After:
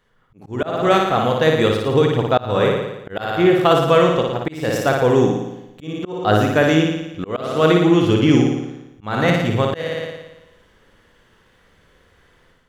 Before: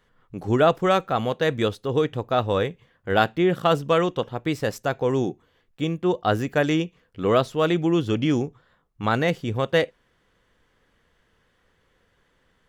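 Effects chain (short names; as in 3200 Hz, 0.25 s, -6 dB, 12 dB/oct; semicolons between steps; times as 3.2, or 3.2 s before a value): flutter echo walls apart 9.8 m, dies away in 0.95 s; auto swell 0.297 s; AGC gain up to 8 dB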